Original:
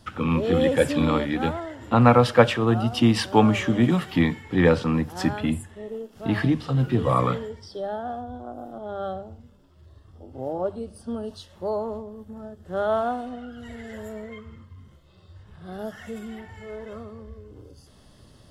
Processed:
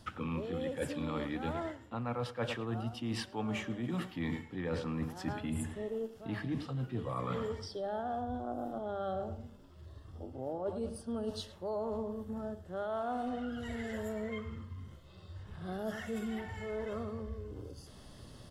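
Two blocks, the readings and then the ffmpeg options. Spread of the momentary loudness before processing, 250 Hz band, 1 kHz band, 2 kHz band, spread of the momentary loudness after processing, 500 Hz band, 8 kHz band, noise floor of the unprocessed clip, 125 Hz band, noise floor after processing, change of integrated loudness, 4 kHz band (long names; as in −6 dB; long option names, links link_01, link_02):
20 LU, −13.5 dB, −13.5 dB, −13.5 dB, 11 LU, −13.0 dB, −10.5 dB, −53 dBFS, −14.5 dB, −55 dBFS, −15.5 dB, −13.0 dB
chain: -filter_complex "[0:a]asplit=2[link_01][link_02];[link_02]adelay=107,lowpass=frequency=3500:poles=1,volume=-14.5dB,asplit=2[link_03][link_04];[link_04]adelay=107,lowpass=frequency=3500:poles=1,volume=0.3,asplit=2[link_05][link_06];[link_06]adelay=107,lowpass=frequency=3500:poles=1,volume=0.3[link_07];[link_01][link_03][link_05][link_07]amix=inputs=4:normalize=0,areverse,acompressor=threshold=-33dB:ratio=16,areverse"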